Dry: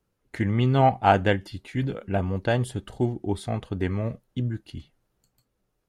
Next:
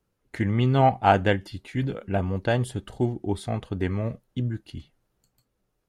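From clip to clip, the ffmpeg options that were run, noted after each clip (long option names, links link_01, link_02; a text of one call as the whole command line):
ffmpeg -i in.wav -af anull out.wav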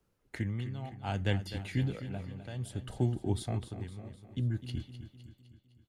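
ffmpeg -i in.wav -filter_complex "[0:a]acrossover=split=180|3000[link_01][link_02][link_03];[link_02]acompressor=threshold=-39dB:ratio=2[link_04];[link_01][link_04][link_03]amix=inputs=3:normalize=0,tremolo=f=0.63:d=0.86,asplit=2[link_05][link_06];[link_06]aecho=0:1:255|510|765|1020|1275|1530:0.266|0.141|0.0747|0.0396|0.021|0.0111[link_07];[link_05][link_07]amix=inputs=2:normalize=0" out.wav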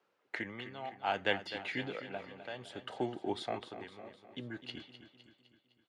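ffmpeg -i in.wav -af "highpass=520,lowpass=3400,volume=6.5dB" out.wav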